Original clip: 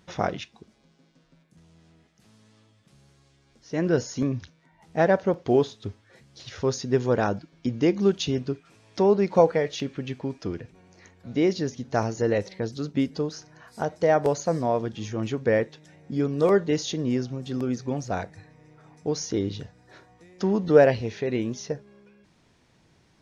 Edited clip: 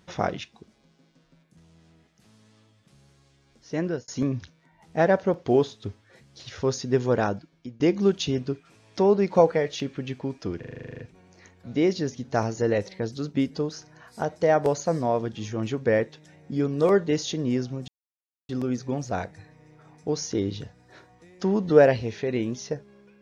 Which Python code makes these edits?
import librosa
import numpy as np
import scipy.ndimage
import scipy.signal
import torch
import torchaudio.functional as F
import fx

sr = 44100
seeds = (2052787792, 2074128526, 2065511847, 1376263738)

y = fx.edit(x, sr, fx.fade_out_span(start_s=3.75, length_s=0.33),
    fx.fade_out_to(start_s=7.22, length_s=0.58, floor_db=-22.0),
    fx.stutter(start_s=10.59, slice_s=0.04, count=11),
    fx.insert_silence(at_s=17.48, length_s=0.61), tone=tone)